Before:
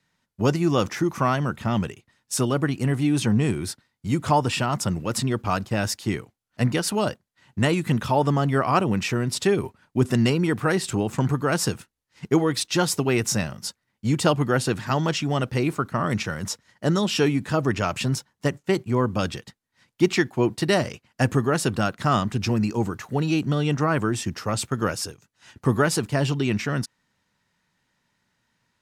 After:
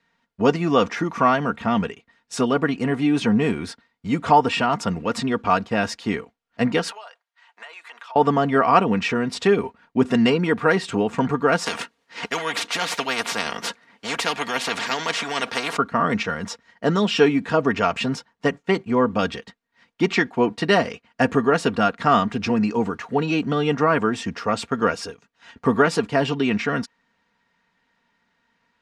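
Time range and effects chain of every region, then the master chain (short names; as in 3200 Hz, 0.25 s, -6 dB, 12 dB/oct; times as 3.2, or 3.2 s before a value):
6.91–8.16 HPF 730 Hz 24 dB/oct + compressor, threshold -42 dBFS
11.66–15.77 HPF 160 Hz + tremolo 11 Hz, depth 30% + spectral compressor 4:1
whole clip: LPF 7200 Hz 12 dB/oct; tone controls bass -7 dB, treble -10 dB; comb 4.3 ms, depth 54%; gain +4.5 dB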